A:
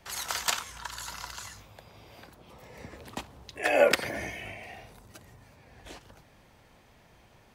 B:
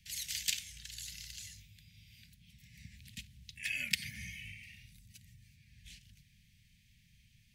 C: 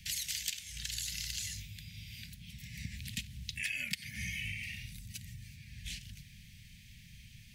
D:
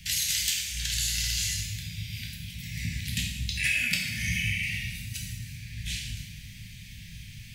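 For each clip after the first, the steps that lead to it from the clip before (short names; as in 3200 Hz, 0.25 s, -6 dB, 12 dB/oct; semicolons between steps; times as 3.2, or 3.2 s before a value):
inverse Chebyshev band-stop 320–1300 Hz, stop band 40 dB; gain -4 dB
compressor 8:1, threshold -46 dBFS, peak gain reduction 20 dB; gain +11.5 dB
plate-style reverb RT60 1.2 s, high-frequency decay 0.85×, DRR -3 dB; gain +6 dB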